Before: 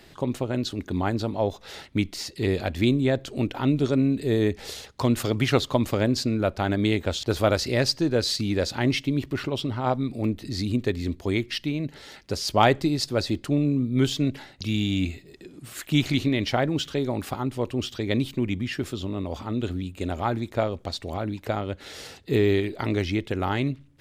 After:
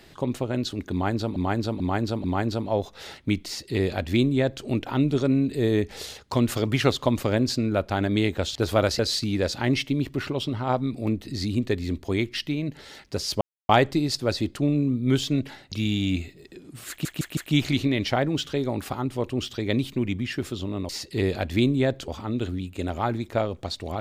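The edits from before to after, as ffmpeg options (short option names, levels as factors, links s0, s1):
-filter_complex "[0:a]asplit=11[s0][s1][s2][s3][s4][s5][s6][s7][s8][s9][s10];[s0]atrim=end=1.362[s11];[s1]atrim=start=0.918:end=1.362[s12];[s2]atrim=start=0.918:end=1.362[s13];[s3]atrim=start=0.918:end=7.672[s14];[s4]atrim=start=8.158:end=12.58,asetpts=PTS-STARTPTS,afade=t=out:st=4.418:d=0.004:c=hsin,apad=pad_dur=0.28[s15];[s5]atrim=start=12.58:end=15.942,asetpts=PTS-STARTPTS,afade=t=in:d=0.004:c=hsin[s16];[s6]atrim=start=15.778:end=15.942[s17];[s7]atrim=start=15.778:end=15.942[s18];[s8]atrim=start=15.778:end=19.302[s19];[s9]atrim=start=2.138:end=3.332[s20];[s10]atrim=start=19.298[s21];[s11][s12]acrossfade=d=0.004:c1=hsin:c2=hsin[s22];[s22][s13]acrossfade=d=0.004:c1=hsin:c2=hsin[s23];[s23][s14]acrossfade=d=0.004:c1=hsin:c2=hsin[s24];[s15][s16]concat=n=2:v=0:a=1[s25];[s24][s25]acrossfade=d=0.004:c1=hsin:c2=hsin[s26];[s26][s17]acrossfade=d=0.004:c1=hsin:c2=hsin[s27];[s27][s18]acrossfade=d=0.004:c1=hsin:c2=hsin[s28];[s28][s19]acrossfade=d=0.004:c1=hsin:c2=hsin[s29];[s29][s20]acrossfade=d=0.004:c1=hsin:c2=hsin[s30];[s30][s21]acrossfade=d=0.004:c1=hsin:c2=hsin"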